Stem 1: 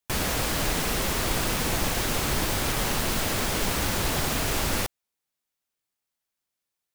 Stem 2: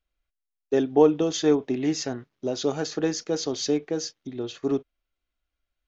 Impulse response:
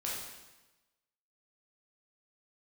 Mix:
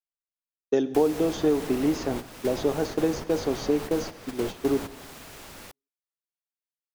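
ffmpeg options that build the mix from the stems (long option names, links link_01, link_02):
-filter_complex "[0:a]adelay=850,volume=-4.5dB[link_01];[1:a]agate=range=-33dB:threshold=-33dB:ratio=3:detection=peak,volume=3dB,asplit=3[link_02][link_03][link_04];[link_03]volume=-17.5dB[link_05];[link_04]apad=whole_len=343859[link_06];[link_01][link_06]sidechaingate=range=-12dB:threshold=-31dB:ratio=16:detection=peak[link_07];[2:a]atrim=start_sample=2205[link_08];[link_05][link_08]afir=irnorm=-1:irlink=0[link_09];[link_07][link_02][link_09]amix=inputs=3:normalize=0,lowshelf=frequency=120:gain=-8.5,acrossover=split=1000|3500[link_10][link_11][link_12];[link_10]acompressor=threshold=-19dB:ratio=4[link_13];[link_11]acompressor=threshold=-44dB:ratio=4[link_14];[link_12]acompressor=threshold=-45dB:ratio=4[link_15];[link_13][link_14][link_15]amix=inputs=3:normalize=0"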